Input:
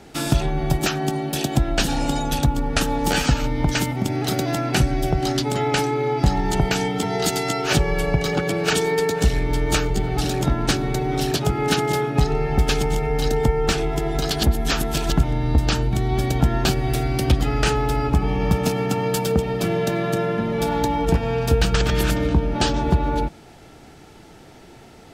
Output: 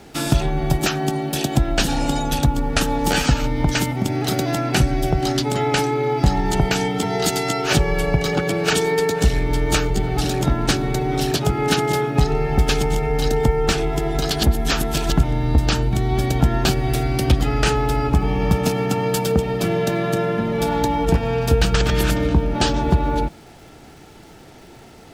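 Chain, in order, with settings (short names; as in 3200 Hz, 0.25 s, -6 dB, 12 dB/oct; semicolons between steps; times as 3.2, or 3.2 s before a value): crackle 580/s -46 dBFS; gain +1.5 dB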